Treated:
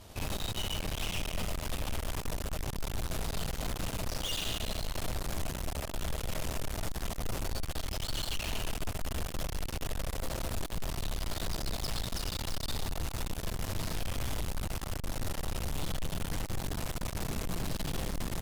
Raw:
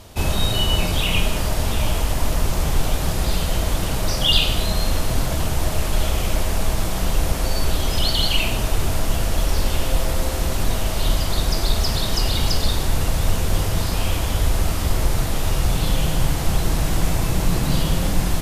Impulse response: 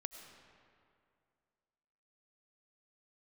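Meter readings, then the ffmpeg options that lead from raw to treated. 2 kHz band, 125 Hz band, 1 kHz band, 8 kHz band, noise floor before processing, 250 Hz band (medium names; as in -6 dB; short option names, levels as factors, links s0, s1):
-13.5 dB, -15.5 dB, -13.5 dB, -12.5 dB, -24 dBFS, -14.0 dB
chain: -filter_complex "[0:a]asplit=5[s0][s1][s2][s3][s4];[s1]adelay=102,afreqshift=35,volume=0.282[s5];[s2]adelay=204,afreqshift=70,volume=0.0955[s6];[s3]adelay=306,afreqshift=105,volume=0.0327[s7];[s4]adelay=408,afreqshift=140,volume=0.0111[s8];[s0][s5][s6][s7][s8]amix=inputs=5:normalize=0[s9];[1:a]atrim=start_sample=2205[s10];[s9][s10]afir=irnorm=-1:irlink=0,aeval=exprs='(tanh(44.7*val(0)+0.75)-tanh(0.75))/44.7':c=same"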